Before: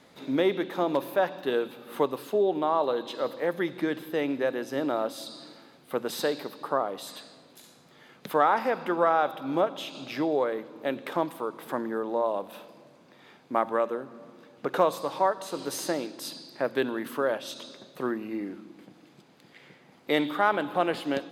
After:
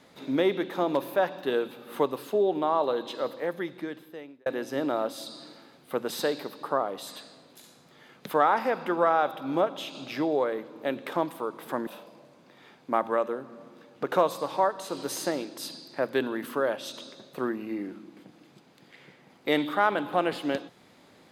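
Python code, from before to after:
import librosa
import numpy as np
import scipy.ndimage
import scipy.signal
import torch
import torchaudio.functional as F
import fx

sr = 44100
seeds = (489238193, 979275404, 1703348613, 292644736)

y = fx.edit(x, sr, fx.fade_out_span(start_s=3.11, length_s=1.35),
    fx.cut(start_s=11.87, length_s=0.62), tone=tone)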